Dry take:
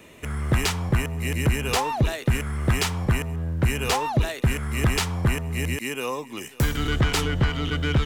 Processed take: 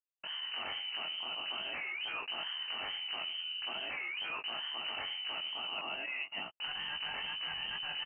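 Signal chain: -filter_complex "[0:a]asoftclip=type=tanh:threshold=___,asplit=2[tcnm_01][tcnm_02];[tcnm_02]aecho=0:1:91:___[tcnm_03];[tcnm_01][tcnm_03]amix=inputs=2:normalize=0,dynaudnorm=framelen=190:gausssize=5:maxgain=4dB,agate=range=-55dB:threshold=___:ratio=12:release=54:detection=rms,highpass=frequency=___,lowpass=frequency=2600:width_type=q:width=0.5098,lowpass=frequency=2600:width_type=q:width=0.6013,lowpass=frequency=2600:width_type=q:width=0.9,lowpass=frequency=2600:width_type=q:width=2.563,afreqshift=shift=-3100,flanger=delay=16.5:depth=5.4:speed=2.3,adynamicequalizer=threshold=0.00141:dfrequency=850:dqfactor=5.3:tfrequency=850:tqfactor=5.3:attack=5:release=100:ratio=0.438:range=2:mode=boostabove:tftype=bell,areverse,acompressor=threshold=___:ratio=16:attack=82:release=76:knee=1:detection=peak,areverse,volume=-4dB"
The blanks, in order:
-25dB, 0.112, -36dB, 83, -38dB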